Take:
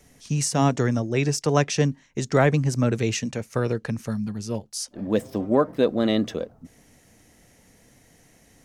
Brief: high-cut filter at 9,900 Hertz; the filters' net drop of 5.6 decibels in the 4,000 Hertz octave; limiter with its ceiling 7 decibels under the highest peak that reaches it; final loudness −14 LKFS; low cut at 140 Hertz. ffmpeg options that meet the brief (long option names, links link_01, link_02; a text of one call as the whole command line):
ffmpeg -i in.wav -af "highpass=140,lowpass=9900,equalizer=frequency=4000:width_type=o:gain=-8,volume=13dB,alimiter=limit=-1dB:level=0:latency=1" out.wav